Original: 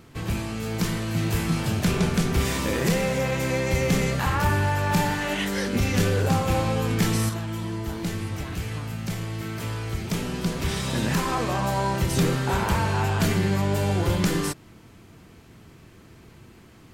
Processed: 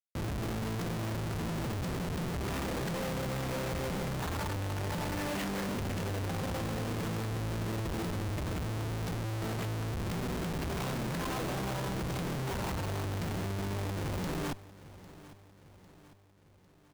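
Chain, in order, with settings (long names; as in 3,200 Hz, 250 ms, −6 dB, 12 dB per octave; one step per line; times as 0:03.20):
downward compressor 6 to 1, threshold −31 dBFS, peak gain reduction 13 dB
comparator with hysteresis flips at −36 dBFS
repeating echo 801 ms, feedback 53%, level −18 dB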